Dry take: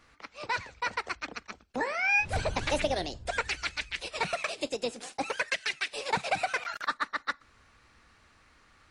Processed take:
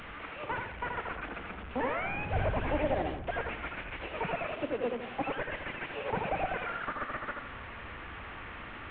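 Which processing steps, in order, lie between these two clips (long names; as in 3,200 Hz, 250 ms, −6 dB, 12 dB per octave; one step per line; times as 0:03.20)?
linear delta modulator 16 kbit/s, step −38.5 dBFS
bucket-brigade delay 80 ms, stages 1,024, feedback 31%, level −4 dB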